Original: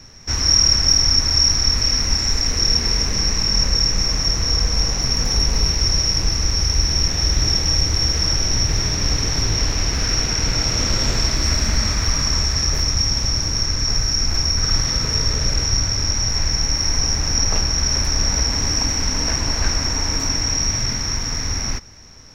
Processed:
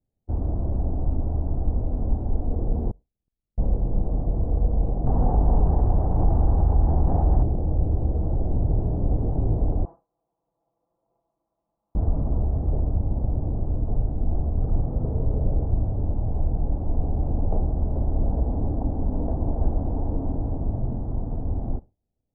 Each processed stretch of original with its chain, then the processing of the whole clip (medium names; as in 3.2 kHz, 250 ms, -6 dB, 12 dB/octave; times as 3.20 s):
2.91–3.58 s: gate -14 dBFS, range -29 dB + transformer saturation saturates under 370 Hz
5.06–7.43 s: high-order bell 1.2 kHz +9 dB + level flattener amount 70%
9.85–11.95 s: band-pass filter 1.1 kHz, Q 3.8 + comb 6 ms, depth 82%
whole clip: Chebyshev low-pass 750 Hz, order 4; expander -26 dBFS